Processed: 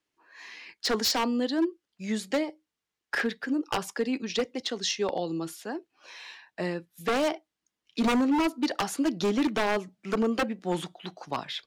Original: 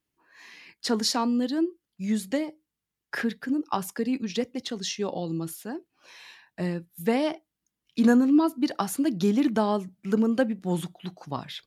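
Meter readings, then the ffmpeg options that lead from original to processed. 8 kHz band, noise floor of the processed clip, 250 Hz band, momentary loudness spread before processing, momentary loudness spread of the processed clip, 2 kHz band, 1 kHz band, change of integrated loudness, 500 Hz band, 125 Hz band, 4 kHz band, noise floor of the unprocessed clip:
0.0 dB, below −85 dBFS, −4.0 dB, 14 LU, 15 LU, +3.5 dB, +0.5 dB, −2.0 dB, −0.5 dB, −6.0 dB, +2.5 dB, below −85 dBFS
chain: -filter_complex "[0:a]acrossover=split=310 7900:gain=0.251 1 0.2[link_01][link_02][link_03];[link_01][link_02][link_03]amix=inputs=3:normalize=0,aeval=exprs='0.075*(abs(mod(val(0)/0.075+3,4)-2)-1)':channel_layout=same,volume=3.5dB"

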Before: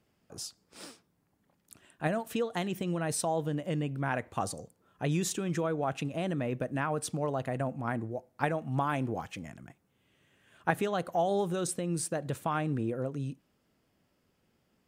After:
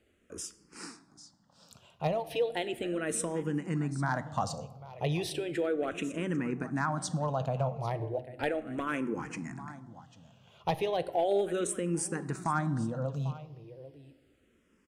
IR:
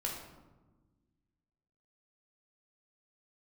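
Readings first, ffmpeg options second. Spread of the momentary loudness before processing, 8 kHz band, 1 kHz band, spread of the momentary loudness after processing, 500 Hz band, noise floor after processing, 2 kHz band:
12 LU, −0.5 dB, −1.0 dB, 15 LU, +1.0 dB, −68 dBFS, −0.5 dB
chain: -filter_complex "[0:a]lowpass=9100,asplit=2[link_01][link_02];[link_02]acompressor=threshold=-40dB:ratio=6,volume=-3dB[link_03];[link_01][link_03]amix=inputs=2:normalize=0,asoftclip=type=hard:threshold=-20.5dB,aecho=1:1:795:0.15,asplit=2[link_04][link_05];[1:a]atrim=start_sample=2205[link_06];[link_05][link_06]afir=irnorm=-1:irlink=0,volume=-12dB[link_07];[link_04][link_07]amix=inputs=2:normalize=0,asplit=2[link_08][link_09];[link_09]afreqshift=-0.35[link_10];[link_08][link_10]amix=inputs=2:normalize=1"

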